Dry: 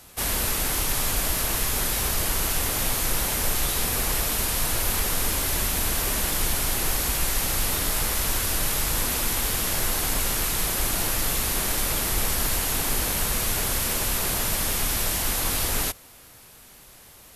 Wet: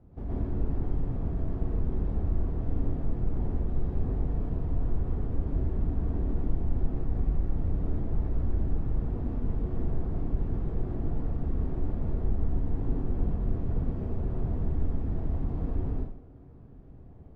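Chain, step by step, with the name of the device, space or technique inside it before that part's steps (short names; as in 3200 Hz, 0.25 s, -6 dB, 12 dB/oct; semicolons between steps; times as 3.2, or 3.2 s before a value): television next door (compressor, threshold -27 dBFS, peak gain reduction 8 dB; LPF 300 Hz 12 dB/oct; reverb RT60 0.55 s, pre-delay 0.11 s, DRR -5 dB); gain +2 dB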